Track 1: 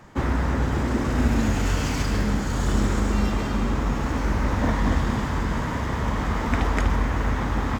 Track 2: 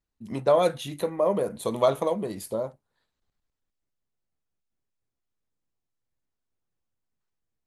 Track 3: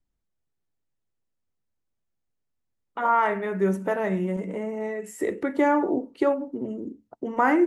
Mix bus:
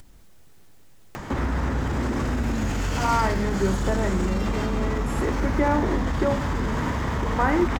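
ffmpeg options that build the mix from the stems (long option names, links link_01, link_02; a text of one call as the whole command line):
ffmpeg -i stem1.wav -i stem2.wav -i stem3.wav -filter_complex "[0:a]alimiter=limit=-18.5dB:level=0:latency=1:release=45,adelay=1150,volume=1.5dB[link_01];[2:a]volume=-2dB[link_02];[link_01][link_02]amix=inputs=2:normalize=0,acompressor=mode=upward:threshold=-24dB:ratio=2.5" out.wav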